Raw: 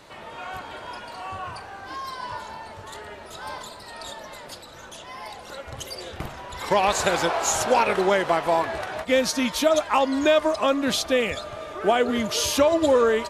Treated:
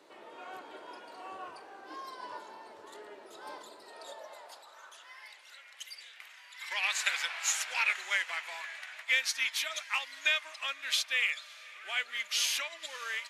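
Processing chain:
high-pass filter sweep 340 Hz → 2,100 Hz, 0:03.80–0:05.37
feedback delay with all-pass diffusion 566 ms, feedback 42%, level −16 dB
expander for the loud parts 1.5 to 1, over −35 dBFS
level −5 dB

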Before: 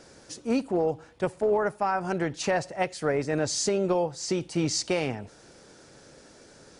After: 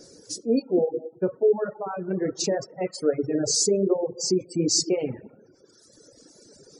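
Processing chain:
low-shelf EQ 220 Hz −10.5 dB
dense smooth reverb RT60 1.5 s, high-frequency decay 0.6×, DRR 2 dB
gate on every frequency bin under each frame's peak −20 dB strong
reverb reduction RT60 0.6 s
flat-topped bell 1,500 Hz −15.5 dB 2.6 octaves
reverb reduction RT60 1.9 s
level +7.5 dB

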